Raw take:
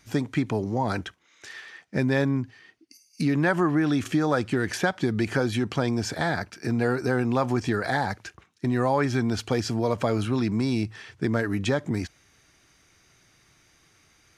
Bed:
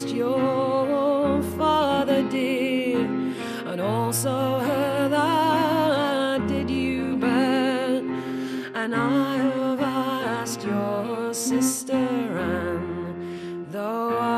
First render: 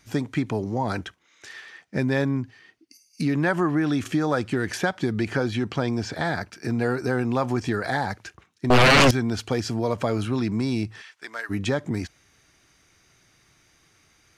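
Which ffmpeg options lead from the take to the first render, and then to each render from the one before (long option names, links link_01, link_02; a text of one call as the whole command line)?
ffmpeg -i in.wav -filter_complex "[0:a]asettb=1/sr,asplit=3[link_01][link_02][link_03];[link_01]atrim=end=5.144[link_04];[link_02]atrim=start=5.14:end=6.25,asetpts=PTS-STARTPTS,afade=type=in:duration=0.004:curve=qsin,afade=type=out:start_time=1.106:duration=0.004:curve=qsin,acrossover=split=6100[link_05][link_06];[link_06]acompressor=threshold=-54dB:ratio=4:attack=1:release=60[link_07];[link_05][link_07]amix=inputs=2:normalize=0[link_08];[link_03]atrim=start=6.246[link_09];[link_04][link_08]acrossfade=duration=0.004:curve1=hsin:curve2=qsin[link_10];[link_10][link_09]acrossfade=duration=0.004:curve1=qsin:curve2=hsin,asettb=1/sr,asplit=3[link_11][link_12][link_13];[link_11]atrim=end=8.704[link_14];[link_12]atrim=start=8.7:end=9.11,asetpts=PTS-STARTPTS,afade=type=in:duration=0.004:curve=qsin,afade=type=out:start_time=0.406:duration=0.004:curve=qsin,aeval=exprs='0.266*sin(PI/2*5.62*val(0)/0.266)':channel_layout=same[link_15];[link_13]atrim=start=9.106[link_16];[link_14][link_15]acrossfade=duration=0.004:curve1=hsin:curve2=qsin[link_17];[link_17][link_16]acrossfade=duration=0.004:curve1=qsin:curve2=hsin,asplit=3[link_18][link_19][link_20];[link_18]afade=type=out:start_time=11.01:duration=0.02[link_21];[link_19]highpass=1100,afade=type=in:start_time=11.01:duration=0.02,afade=type=out:start_time=11.49:duration=0.02[link_22];[link_20]afade=type=in:start_time=11.49:duration=0.02[link_23];[link_21][link_22][link_23]amix=inputs=3:normalize=0" out.wav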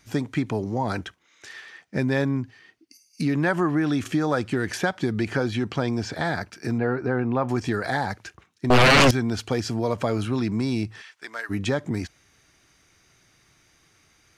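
ffmpeg -i in.wav -filter_complex "[0:a]asettb=1/sr,asplit=3[link_01][link_02][link_03];[link_01]atrim=end=6.784[link_04];[link_02]atrim=start=6.78:end=7.49,asetpts=PTS-STARTPTS,afade=type=in:duration=0.004:curve=qsin,afade=type=out:start_time=0.706:duration=0.004:curve=qsin,lowpass=2100[link_05];[link_03]atrim=start=7.486[link_06];[link_04][link_05]acrossfade=duration=0.004:curve1=hsin:curve2=qsin[link_07];[link_07][link_06]acrossfade=duration=0.004:curve1=qsin:curve2=hsin" out.wav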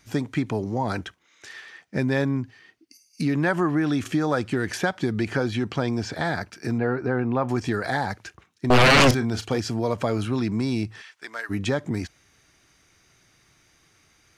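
ffmpeg -i in.wav -filter_complex "[0:a]asettb=1/sr,asplit=3[link_01][link_02][link_03];[link_01]atrim=end=9.074[link_04];[link_02]atrim=start=9.07:end=9.58,asetpts=PTS-STARTPTS,afade=type=in:duration=0.004:curve=qsin,afade=type=out:start_time=0.506:duration=0.004:curve=qsin,asplit=2[link_05][link_06];[link_06]adelay=36,volume=-11dB[link_07];[link_05][link_07]amix=inputs=2:normalize=0,atrim=end_sample=22491[link_08];[link_03]atrim=start=9.576[link_09];[link_04][link_08]acrossfade=duration=0.004:curve1=hsin:curve2=qsin[link_10];[link_10][link_09]acrossfade=duration=0.004:curve1=qsin:curve2=hsin" out.wav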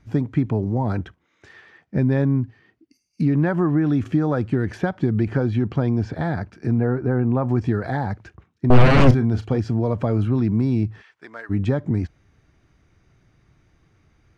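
ffmpeg -i in.wav -af "lowpass=frequency=1100:poles=1,lowshelf=frequency=200:gain=11" out.wav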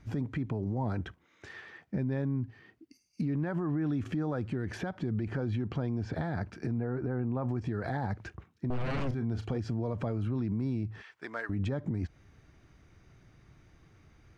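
ffmpeg -i in.wav -af "acompressor=threshold=-25dB:ratio=12,alimiter=level_in=0.5dB:limit=-24dB:level=0:latency=1,volume=-0.5dB" out.wav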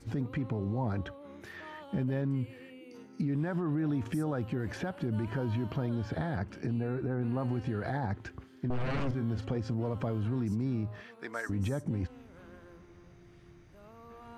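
ffmpeg -i in.wav -i bed.wav -filter_complex "[1:a]volume=-27.5dB[link_01];[0:a][link_01]amix=inputs=2:normalize=0" out.wav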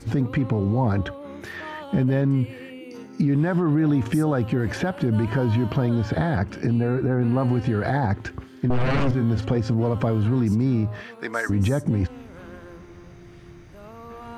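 ffmpeg -i in.wav -af "volume=11dB" out.wav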